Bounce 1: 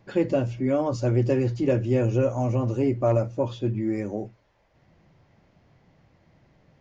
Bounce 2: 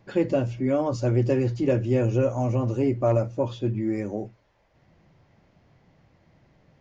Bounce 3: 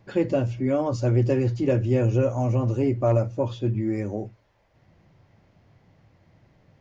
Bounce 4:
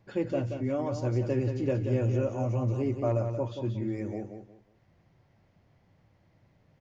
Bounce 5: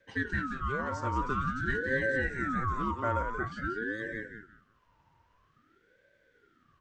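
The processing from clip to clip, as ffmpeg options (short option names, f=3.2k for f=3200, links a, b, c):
-af anull
-af "equalizer=f=100:w=4.2:g=7"
-af "aecho=1:1:180|360|540:0.422|0.11|0.0285,volume=-7dB"
-af "afreqshift=390,aeval=exprs='val(0)*sin(2*PI*730*n/s+730*0.45/0.49*sin(2*PI*0.49*n/s))':c=same"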